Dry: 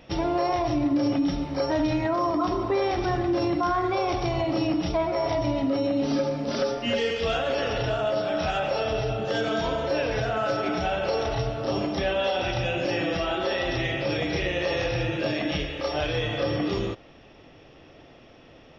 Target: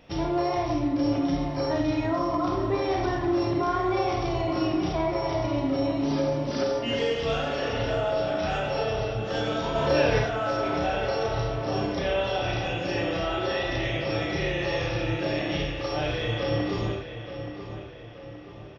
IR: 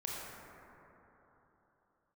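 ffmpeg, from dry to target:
-filter_complex "[0:a]asettb=1/sr,asplit=3[link_01][link_02][link_03];[link_01]atrim=end=9.754[link_04];[link_02]atrim=start=9.75:end=10.19,asetpts=PTS-STARTPTS,afade=type=in:duration=0.004:curve=qsin,afade=type=out:start_time=0.436:duration=0.004:curve=qsin,acontrast=56[link_05];[link_03]atrim=start=10.186[link_06];[link_04][link_05]acrossfade=duration=0.004:curve1=hsin:curve2=qsin[link_07];[link_07][link_06]acrossfade=duration=0.004:curve1=qsin:curve2=hsin,asplit=2[link_08][link_09];[link_09]adelay=876,lowpass=frequency=3700:poles=1,volume=-10dB,asplit=2[link_10][link_11];[link_11]adelay=876,lowpass=frequency=3700:poles=1,volume=0.49,asplit=2[link_12][link_13];[link_13]adelay=876,lowpass=frequency=3700:poles=1,volume=0.49,asplit=2[link_14][link_15];[link_15]adelay=876,lowpass=frequency=3700:poles=1,volume=0.49,asplit=2[link_16][link_17];[link_17]adelay=876,lowpass=frequency=3700:poles=1,volume=0.49[link_18];[link_08][link_10][link_12][link_14][link_16][link_18]amix=inputs=6:normalize=0[link_19];[1:a]atrim=start_sample=2205,atrim=end_sample=4410[link_20];[link_19][link_20]afir=irnorm=-1:irlink=0"

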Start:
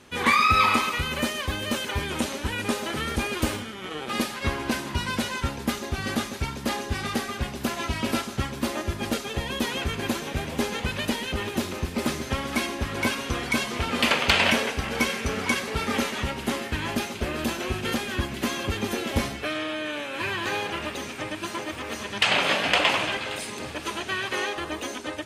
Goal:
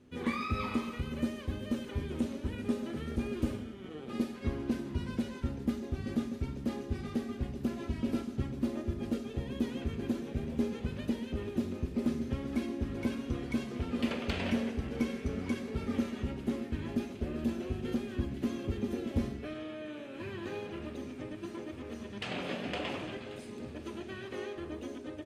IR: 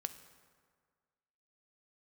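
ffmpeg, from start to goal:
-filter_complex "[0:a]firequalizer=gain_entry='entry(340,0);entry(840,-13);entry(11000,-17)':delay=0.05:min_phase=1[link_01];[1:a]atrim=start_sample=2205,asetrate=66150,aresample=44100[link_02];[link_01][link_02]afir=irnorm=-1:irlink=0"

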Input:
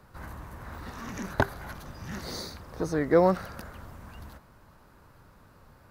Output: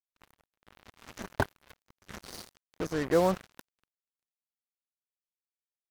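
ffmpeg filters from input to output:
ffmpeg -i in.wav -af "acrusher=bits=4:mix=0:aa=0.5,volume=-4dB" out.wav

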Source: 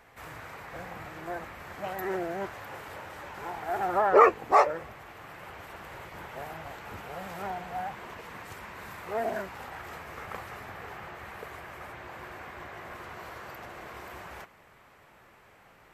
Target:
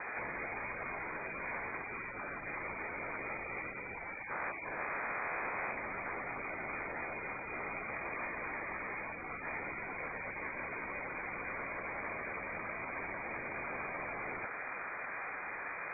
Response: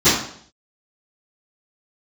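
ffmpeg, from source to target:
-filter_complex "[0:a]asettb=1/sr,asplit=3[link_01][link_02][link_03];[link_01]atrim=end=3.964[link_04];[link_02]atrim=start=3.96:end=5.72,asetpts=PTS-STARTPTS,afade=type=in:duration=0.004:curve=qsin,afade=type=out:start_time=1.756:duration=0.004:curve=qsin,aeval=exprs='(tanh(31.6*val(0)+0.75)-tanh(0.75))/31.6':channel_layout=same[link_05];[link_03]atrim=start=5.716[link_06];[link_04][link_05]acrossfade=duration=0.004:curve1=hsin:curve2=qsin[link_07];[link_07][link_06]acrossfade=duration=0.004:curve1=qsin:curve2=hsin,acrossover=split=880[link_08][link_09];[link_08]acompressor=threshold=-47dB:ratio=6[link_10];[link_10][link_09]amix=inputs=2:normalize=0,afftfilt=real='re*lt(hypot(re,im),0.01)':imag='im*lt(hypot(re,im),0.01)':win_size=1024:overlap=0.75,lowpass=frequency=2100:width_type=q:width=0.5098,lowpass=frequency=2100:width_type=q:width=0.6013,lowpass=frequency=2100:width_type=q:width=0.9,lowpass=frequency=2100:width_type=q:width=2.563,afreqshift=-2500,volume=16dB"

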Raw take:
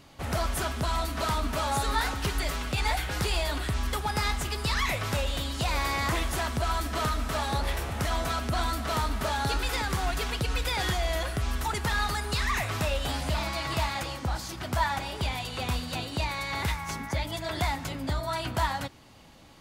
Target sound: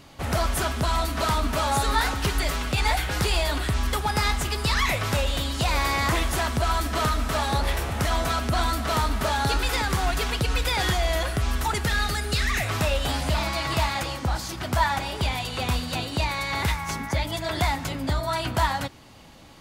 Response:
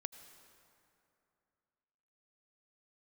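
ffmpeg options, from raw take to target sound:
-filter_complex "[0:a]asettb=1/sr,asplit=3[link_01][link_02][link_03];[link_01]atrim=end=11.834[link_04];[link_02]atrim=start=11.83:end=12.66,asetpts=PTS-STARTPTS,afade=type=in:duration=0.004:curve=qsin,afade=type=out:start_time=0.826:duration=0.004:curve=qsin,equalizer=frequency=1000:width_type=o:width=0.36:gain=-15[link_05];[link_03]atrim=start=12.656[link_06];[link_04][link_05]acrossfade=duration=0.004:curve1=hsin:curve2=qsin[link_07];[link_07][link_06]acrossfade=duration=0.004:curve1=qsin:curve2=hsin,volume=4.5dB"

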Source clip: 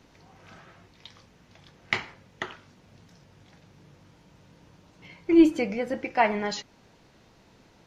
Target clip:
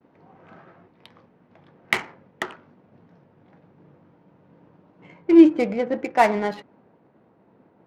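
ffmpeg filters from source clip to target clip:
ffmpeg -i in.wav -af "highpass=180,agate=range=-33dB:threshold=-56dB:ratio=3:detection=peak,asetnsamples=nb_out_samples=441:pad=0,asendcmd='5.22 highshelf g -11.5',highshelf=frequency=3300:gain=-4,adynamicsmooth=sensitivity=5.5:basefreq=1300,volume=6dB" out.wav

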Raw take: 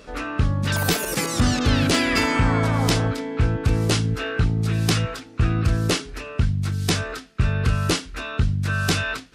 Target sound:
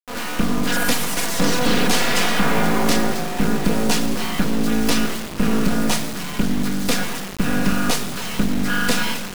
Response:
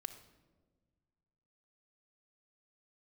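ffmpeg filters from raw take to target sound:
-filter_complex "[0:a]aeval=exprs='abs(val(0))':channel_layout=same,lowshelf=frequency=120:width_type=q:width=1.5:gain=-11[link_01];[1:a]atrim=start_sample=2205,asetrate=26019,aresample=44100[link_02];[link_01][link_02]afir=irnorm=-1:irlink=0,acrusher=bits=3:dc=4:mix=0:aa=0.000001,volume=5dB"

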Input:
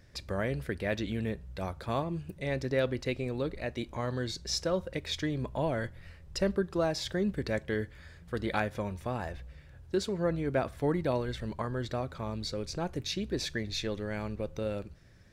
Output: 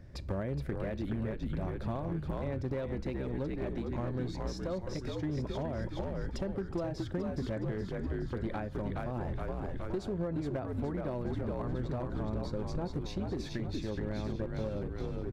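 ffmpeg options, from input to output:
ffmpeg -i in.wav -filter_complex "[0:a]asplit=8[link_01][link_02][link_03][link_04][link_05][link_06][link_07][link_08];[link_02]adelay=419,afreqshift=-67,volume=-4dB[link_09];[link_03]adelay=838,afreqshift=-134,volume=-9.4dB[link_10];[link_04]adelay=1257,afreqshift=-201,volume=-14.7dB[link_11];[link_05]adelay=1676,afreqshift=-268,volume=-20.1dB[link_12];[link_06]adelay=2095,afreqshift=-335,volume=-25.4dB[link_13];[link_07]adelay=2514,afreqshift=-402,volume=-30.8dB[link_14];[link_08]adelay=2933,afreqshift=-469,volume=-36.1dB[link_15];[link_01][link_09][link_10][link_11][link_12][link_13][link_14][link_15]amix=inputs=8:normalize=0,acrossover=split=670[link_16][link_17];[link_16]alimiter=level_in=0.5dB:limit=-24dB:level=0:latency=1:release=116,volume=-0.5dB[link_18];[link_18][link_17]amix=inputs=2:normalize=0,acompressor=threshold=-37dB:ratio=10,tiltshelf=frequency=1300:gain=8,bandreject=frequency=460:width=12,aeval=exprs='clip(val(0),-1,0.0282)':channel_layout=same" out.wav

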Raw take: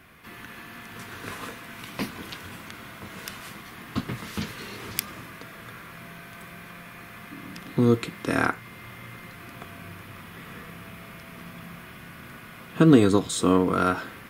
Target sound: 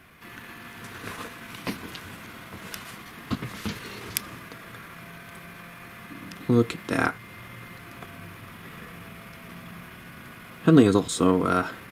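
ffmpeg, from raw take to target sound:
ffmpeg -i in.wav -af "atempo=1.2,aresample=32000,aresample=44100" out.wav

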